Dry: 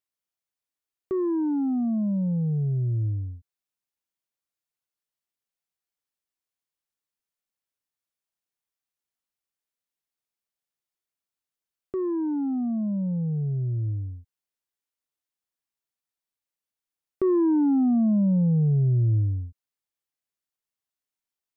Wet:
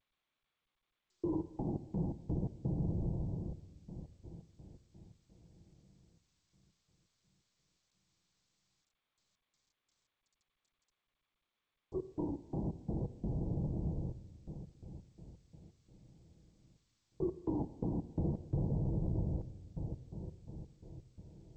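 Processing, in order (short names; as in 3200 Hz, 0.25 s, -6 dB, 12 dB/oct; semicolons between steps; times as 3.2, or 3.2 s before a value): octaver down 1 oct, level +2 dB; LPC vocoder at 8 kHz whisper; elliptic low-pass 940 Hz, stop band 50 dB; diffused feedback echo 0.508 s, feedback 54%, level -9 dB; step gate "xxxxx..x.x.x.x." 85 bpm -60 dB; HPF 100 Hz 6 dB/oct; compressor 4:1, threshold -24 dBFS, peak gain reduction 8 dB; bell 250 Hz -9.5 dB 0.38 oct; reverb RT60 1.5 s, pre-delay 6 ms, DRR 11 dB; gain -6.5 dB; G.722 64 kbps 16000 Hz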